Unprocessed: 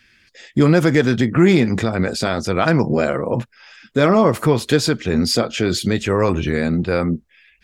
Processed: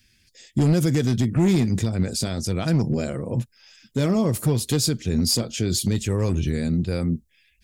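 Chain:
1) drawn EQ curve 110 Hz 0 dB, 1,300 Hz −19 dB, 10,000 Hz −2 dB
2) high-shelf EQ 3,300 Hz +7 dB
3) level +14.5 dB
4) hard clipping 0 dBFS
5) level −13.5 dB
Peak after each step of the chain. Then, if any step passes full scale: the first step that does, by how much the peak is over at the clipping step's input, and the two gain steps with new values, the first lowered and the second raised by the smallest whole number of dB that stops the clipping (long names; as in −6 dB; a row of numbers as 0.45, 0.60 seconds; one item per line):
−9.5, −9.0, +5.5, 0.0, −13.5 dBFS
step 3, 5.5 dB
step 3 +8.5 dB, step 5 −7.5 dB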